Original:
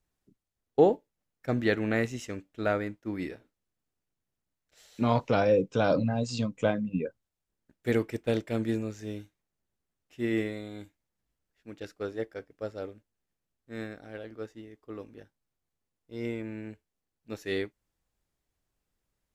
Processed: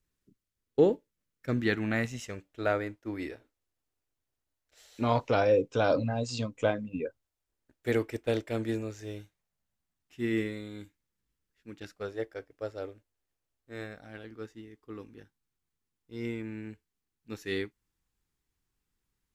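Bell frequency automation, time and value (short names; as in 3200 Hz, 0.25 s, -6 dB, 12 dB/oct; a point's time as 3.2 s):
bell -12 dB 0.54 oct
1.49 s 750 Hz
2.67 s 180 Hz
8.86 s 180 Hz
10.38 s 680 Hz
11.71 s 680 Hz
12.22 s 190 Hz
13.73 s 190 Hz
14.25 s 610 Hz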